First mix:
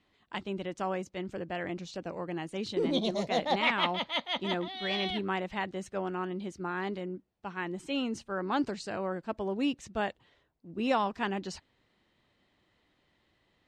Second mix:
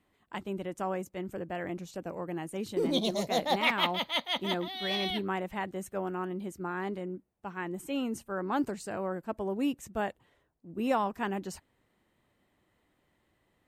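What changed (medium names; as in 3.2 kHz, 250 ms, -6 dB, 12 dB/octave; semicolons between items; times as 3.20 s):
speech: add peaking EQ 4.4 kHz -11 dB 1.6 oct; master: remove distance through air 91 m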